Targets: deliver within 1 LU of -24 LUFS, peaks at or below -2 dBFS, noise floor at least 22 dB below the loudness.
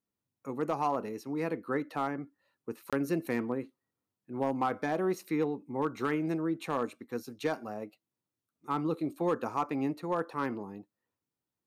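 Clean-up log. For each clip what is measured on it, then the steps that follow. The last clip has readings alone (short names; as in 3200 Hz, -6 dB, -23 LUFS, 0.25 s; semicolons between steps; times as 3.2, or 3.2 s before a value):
clipped 0.2%; flat tops at -21.0 dBFS; dropouts 1; longest dropout 26 ms; loudness -33.5 LUFS; peak -21.0 dBFS; loudness target -24.0 LUFS
-> clip repair -21 dBFS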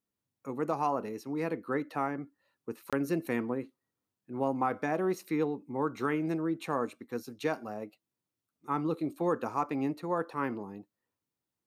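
clipped 0.0%; dropouts 1; longest dropout 26 ms
-> interpolate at 2.9, 26 ms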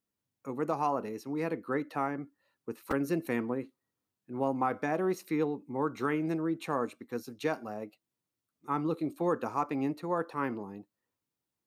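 dropouts 0; loudness -33.5 LUFS; peak -18.0 dBFS; loudness target -24.0 LUFS
-> gain +9.5 dB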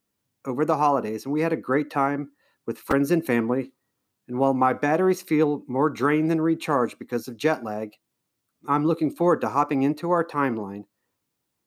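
loudness -24.0 LUFS; peak -8.5 dBFS; noise floor -79 dBFS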